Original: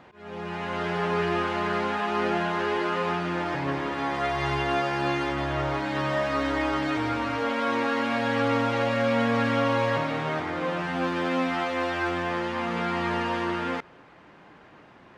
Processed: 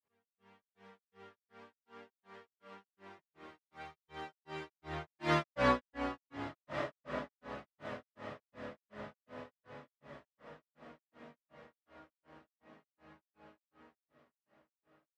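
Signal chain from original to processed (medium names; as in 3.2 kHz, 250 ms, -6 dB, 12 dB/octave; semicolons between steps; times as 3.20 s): Doppler pass-by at 5.52 s, 37 m/s, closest 2.2 m; echo that smears into a reverb 1376 ms, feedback 49%, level -14 dB; granulator 258 ms, grains 2.7 per s, spray 27 ms, pitch spread up and down by 0 st; trim +9.5 dB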